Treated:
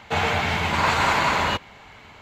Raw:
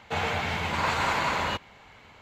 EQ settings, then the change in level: band-stop 510 Hz, Q 16; +6.0 dB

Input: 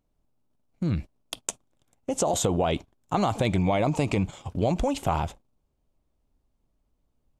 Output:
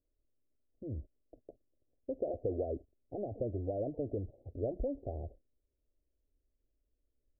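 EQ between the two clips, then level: steep low-pass 660 Hz 48 dB/octave; dynamic bell 310 Hz, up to -3 dB, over -46 dBFS, Q 5.5; static phaser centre 420 Hz, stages 4; -7.0 dB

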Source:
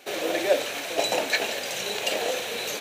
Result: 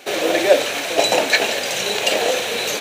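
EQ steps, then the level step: peaking EQ 13 kHz -4 dB 0.43 oct; +8.5 dB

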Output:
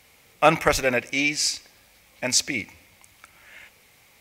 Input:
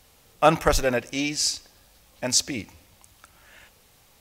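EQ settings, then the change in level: high-pass 92 Hz 6 dB/octave; peaking EQ 2.2 kHz +11 dB 0.45 oct; 0.0 dB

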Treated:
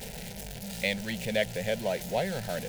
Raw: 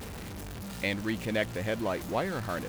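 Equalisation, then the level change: peaking EQ 290 Hz -7 dB 1.4 oct; static phaser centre 310 Hz, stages 6; +5.5 dB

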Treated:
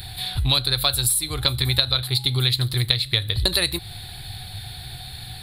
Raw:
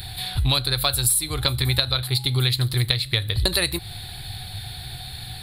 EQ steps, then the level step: dynamic bell 3.7 kHz, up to +4 dB, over -33 dBFS, Q 2.8; -1.0 dB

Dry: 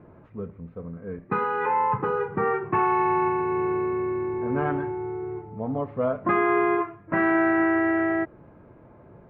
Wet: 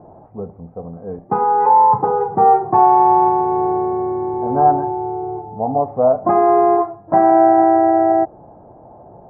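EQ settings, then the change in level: resonant low-pass 770 Hz, resonance Q 8.7; +3.5 dB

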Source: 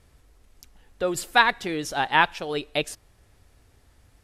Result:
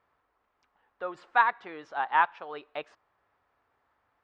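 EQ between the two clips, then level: band-pass filter 1.1 kHz, Q 1.9; distance through air 140 m; 0.0 dB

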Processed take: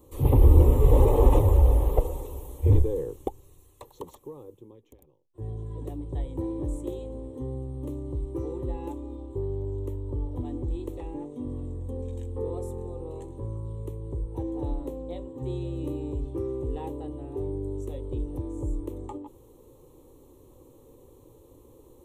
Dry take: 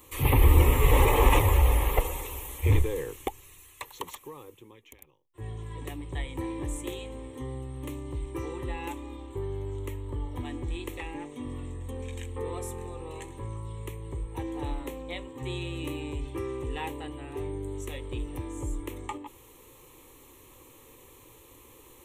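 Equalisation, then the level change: FFT filter 590 Hz 0 dB, 2.2 kHz -25 dB, 3.9 kHz -14 dB; +3.0 dB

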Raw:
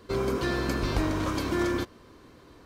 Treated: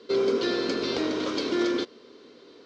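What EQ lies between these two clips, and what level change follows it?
cabinet simulation 200–5500 Hz, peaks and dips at 240 Hz +7 dB, 430 Hz +6 dB, 1.4 kHz +8 dB, 2 kHz +7 dB; peaking EQ 450 Hz +9.5 dB 1.3 oct; resonant high shelf 2.5 kHz +11 dB, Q 1.5; -6.5 dB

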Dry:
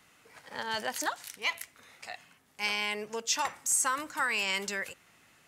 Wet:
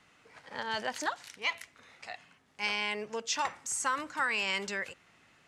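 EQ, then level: distance through air 70 m; 0.0 dB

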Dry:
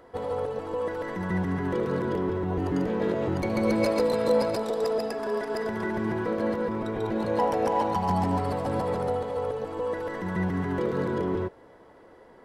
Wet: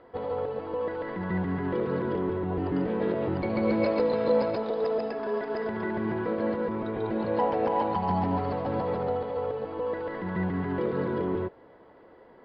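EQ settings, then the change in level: Chebyshev low-pass 4.8 kHz, order 5; distance through air 150 m; bass shelf 88 Hz -6 dB; 0.0 dB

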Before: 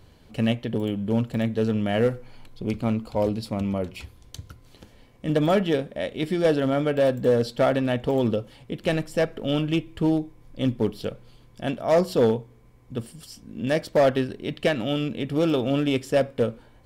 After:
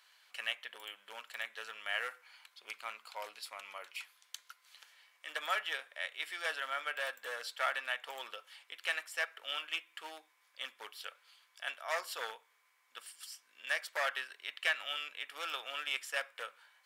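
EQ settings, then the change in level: dynamic bell 4.6 kHz, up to -5 dB, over -48 dBFS, Q 1.2; ladder high-pass 1.1 kHz, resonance 25%; +3.5 dB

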